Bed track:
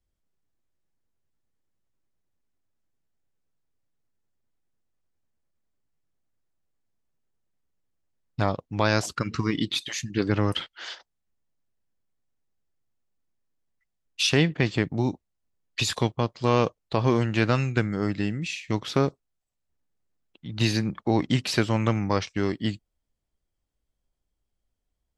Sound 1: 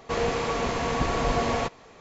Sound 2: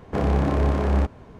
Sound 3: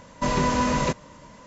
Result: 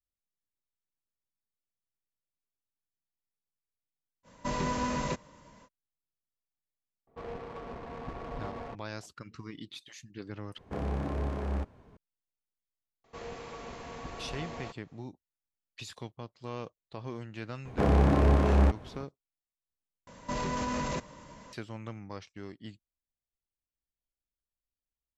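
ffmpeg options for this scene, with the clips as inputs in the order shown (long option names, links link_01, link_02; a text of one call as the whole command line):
ffmpeg -i bed.wav -i cue0.wav -i cue1.wav -i cue2.wav -filter_complex "[3:a]asplit=2[link_01][link_02];[1:a]asplit=2[link_03][link_04];[2:a]asplit=2[link_05][link_06];[0:a]volume=-18dB[link_07];[link_03]adynamicsmooth=sensitivity=1.5:basefreq=770[link_08];[link_02]alimiter=limit=-21.5dB:level=0:latency=1:release=17[link_09];[link_07]asplit=3[link_10][link_11][link_12];[link_10]atrim=end=10.584[link_13];[link_05]atrim=end=1.39,asetpts=PTS-STARTPTS,volume=-12dB[link_14];[link_11]atrim=start=11.966:end=20.074[link_15];[link_09]atrim=end=1.46,asetpts=PTS-STARTPTS,volume=-3.5dB[link_16];[link_12]atrim=start=21.526[link_17];[link_01]atrim=end=1.46,asetpts=PTS-STARTPTS,volume=-9dB,afade=type=in:duration=0.05,afade=type=out:start_time=1.41:duration=0.05,adelay=4230[link_18];[link_08]atrim=end=2,asetpts=PTS-STARTPTS,volume=-14.5dB,afade=type=in:duration=0.004:curve=hsin,afade=type=out:start_time=1.996:duration=0.004:curve=hsin,adelay=7070[link_19];[link_04]atrim=end=2,asetpts=PTS-STARTPTS,volume=-16.5dB,afade=type=in:duration=0.004:curve=hsin,afade=type=out:start_time=1.996:duration=0.004:curve=hsin,adelay=13040[link_20];[link_06]atrim=end=1.39,asetpts=PTS-STARTPTS,volume=-2dB,afade=type=in:duration=0.004:curve=hsin,afade=type=out:start_time=1.386:duration=0.004:curve=hsin,adelay=17650[link_21];[link_13][link_14]acrossfade=duration=0.004:curve1=hsin:curve2=hsin[link_22];[link_22][link_15]acrossfade=duration=0.004:curve1=hsin:curve2=hsin[link_23];[link_23][link_16]acrossfade=duration=0.004:curve1=hsin:curve2=hsin[link_24];[link_24][link_17]acrossfade=duration=0.004:curve1=hsin:curve2=hsin[link_25];[link_25][link_18][link_19][link_20][link_21]amix=inputs=5:normalize=0" out.wav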